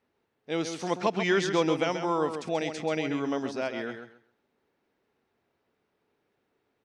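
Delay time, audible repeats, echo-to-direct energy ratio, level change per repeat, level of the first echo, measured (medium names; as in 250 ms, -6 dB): 134 ms, 2, -8.0 dB, -14.0 dB, -8.0 dB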